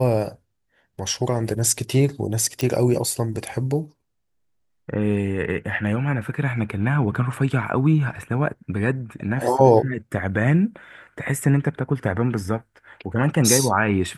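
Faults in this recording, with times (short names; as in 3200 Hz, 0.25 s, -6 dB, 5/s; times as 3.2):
2.61 pop -10 dBFS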